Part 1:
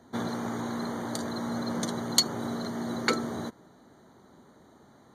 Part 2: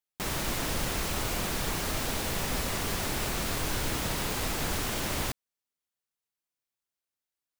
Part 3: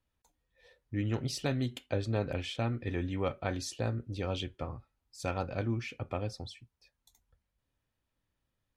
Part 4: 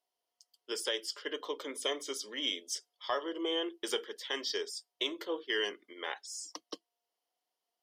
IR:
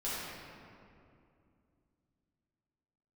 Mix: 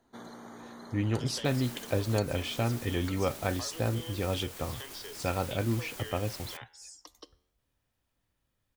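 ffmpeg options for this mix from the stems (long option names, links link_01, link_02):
-filter_complex "[0:a]volume=-12dB[link_01];[1:a]highshelf=frequency=5800:gain=7.5,alimiter=level_in=3dB:limit=-24dB:level=0:latency=1,volume=-3dB,adelay=1250,volume=-7dB[link_02];[2:a]volume=3dB[link_03];[3:a]flanger=delay=4.5:depth=8.5:regen=-90:speed=0.23:shape=sinusoidal,adelay=500,volume=-2dB[link_04];[link_01][link_02][link_04]amix=inputs=3:normalize=0,lowshelf=frequency=160:gain=-10,acompressor=threshold=-39dB:ratio=6,volume=0dB[link_05];[link_03][link_05]amix=inputs=2:normalize=0"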